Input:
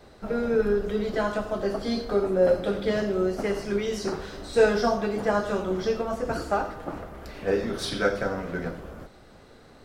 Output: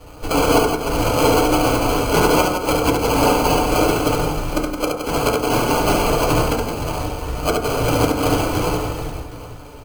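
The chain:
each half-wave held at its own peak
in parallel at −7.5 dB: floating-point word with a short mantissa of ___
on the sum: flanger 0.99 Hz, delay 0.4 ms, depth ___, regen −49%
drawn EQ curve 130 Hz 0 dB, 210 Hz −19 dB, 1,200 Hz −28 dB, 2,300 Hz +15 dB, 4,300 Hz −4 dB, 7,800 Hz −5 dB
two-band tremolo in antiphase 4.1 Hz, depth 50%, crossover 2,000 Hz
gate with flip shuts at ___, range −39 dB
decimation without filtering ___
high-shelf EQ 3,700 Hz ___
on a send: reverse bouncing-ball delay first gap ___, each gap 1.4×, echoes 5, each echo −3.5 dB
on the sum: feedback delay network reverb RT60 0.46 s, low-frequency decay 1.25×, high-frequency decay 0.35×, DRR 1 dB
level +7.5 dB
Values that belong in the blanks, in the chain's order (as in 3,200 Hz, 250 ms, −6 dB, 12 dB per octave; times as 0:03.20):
2 bits, 2.1 ms, −15 dBFS, 24×, +3 dB, 70 ms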